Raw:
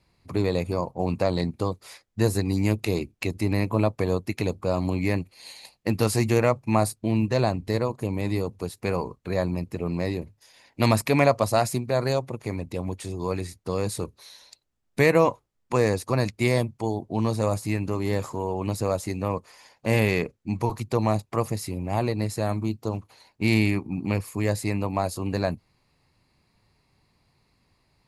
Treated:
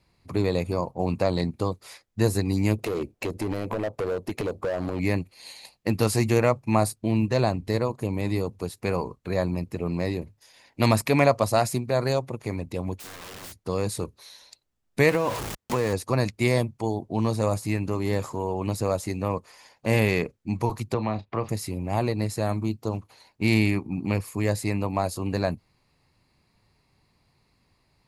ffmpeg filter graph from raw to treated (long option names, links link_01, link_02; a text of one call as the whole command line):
ffmpeg -i in.wav -filter_complex "[0:a]asettb=1/sr,asplit=3[link_01][link_02][link_03];[link_01]atrim=end=2.784[link_04];[link_02]atrim=start=2.78:end=5,asetpts=PTS-STARTPTS,afade=type=in:duration=0.004:curve=qsin,afade=type=out:start_time=2.216:duration=0.004:curve=qsin,equalizer=frequency=540:width_type=o:width=1.5:gain=11.5,acompressor=threshold=-21dB:ratio=4:attack=3.2:release=140:knee=1:detection=peak,asoftclip=type=hard:threshold=-23dB[link_05];[link_03]atrim=start=4.996[link_06];[link_04][link_05]acrossfade=duration=0.004:curve1=hsin:curve2=qsin[link_07];[link_07][link_06]acrossfade=duration=0.004:curve1=qsin:curve2=hsin,asettb=1/sr,asplit=3[link_08][link_09][link_10];[link_08]atrim=end=12.974[link_11];[link_09]atrim=start=12.97:end=13.63,asetpts=PTS-STARTPTS,afade=type=in:duration=0.004:curve=qsin,afade=type=out:start_time=0.656:duration=0.004:curve=qsin,acompressor=threshold=-29dB:ratio=5:attack=3.2:release=140:knee=1:detection=peak,aeval=exprs='(mod(63.1*val(0)+1,2)-1)/63.1':channel_layout=same[link_12];[link_10]atrim=start=13.626[link_13];[link_11][link_12]acrossfade=duration=0.004:curve1=hsin:curve2=qsin[link_14];[link_14][link_13]acrossfade=duration=0.004:curve1=qsin:curve2=hsin,asettb=1/sr,asplit=3[link_15][link_16][link_17];[link_15]atrim=end=15.094[link_18];[link_16]atrim=start=15.09:end=15.93,asetpts=PTS-STARTPTS,afade=type=in:duration=0.004:curve=qsin,afade=type=out:start_time=0.836:duration=0.004:curve=qsin,aeval=exprs='val(0)+0.5*0.0531*sgn(val(0))':channel_layout=same,highpass=48,acompressor=threshold=-19dB:ratio=6:attack=3.2:release=140:knee=1:detection=peak[link_19];[link_17]atrim=start=15.926[link_20];[link_18][link_19]acrossfade=duration=0.004:curve1=hsin:curve2=qsin[link_21];[link_21][link_20]acrossfade=duration=0.004:curve1=qsin:curve2=hsin,asettb=1/sr,asplit=3[link_22][link_23][link_24];[link_22]atrim=end=20.944[link_25];[link_23]atrim=start=20.94:end=21.49,asetpts=PTS-STARTPTS,afade=type=in:duration=0.004:curve=qsin,afade=type=out:start_time=0.546:duration=0.004:curve=qsin,lowpass=frequency=3900:width=0.5412,lowpass=frequency=3900:width=1.3066,asplit=2[link_26][link_27];[link_27]adelay=32,volume=-13dB[link_28];[link_26][link_28]amix=inputs=2:normalize=0,atrim=end_sample=24255,acrossover=split=430|1200[link_29][link_30][link_31];[link_29]acompressor=threshold=-26dB:ratio=4[link_32];[link_30]acompressor=threshold=-31dB:ratio=4[link_33];[link_31]acompressor=threshold=-35dB:ratio=4[link_34];[link_32][link_33][link_34]amix=inputs=3:normalize=0[link_35];[link_24]atrim=start=21.486[link_36];[link_25][link_35]acrossfade=duration=0.004:curve1=hsin:curve2=qsin[link_37];[link_37][link_36]acrossfade=duration=0.004:curve1=qsin:curve2=hsin" out.wav